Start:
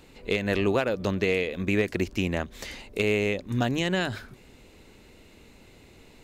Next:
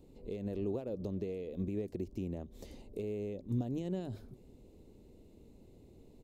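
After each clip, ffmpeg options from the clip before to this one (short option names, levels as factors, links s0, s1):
-af "alimiter=limit=0.0841:level=0:latency=1:release=203,firequalizer=gain_entry='entry(390,0);entry(1500,-24);entry(3600,-15);entry(12000,-9)':delay=0.05:min_phase=1,volume=0.631"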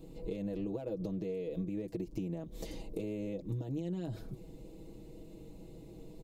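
-af "aecho=1:1:6.2:0.94,acompressor=threshold=0.01:ratio=6,volume=1.88"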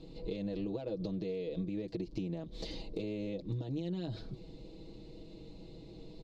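-af "lowpass=f=4300:t=q:w=3.4"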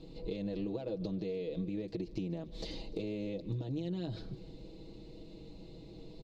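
-af "aecho=1:1:148|296|444|592|740:0.1|0.06|0.036|0.0216|0.013"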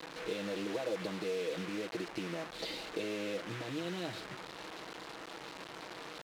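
-af "acrusher=bits=7:mix=0:aa=0.000001,bandpass=f=1600:t=q:w=0.66:csg=0,volume=2.99"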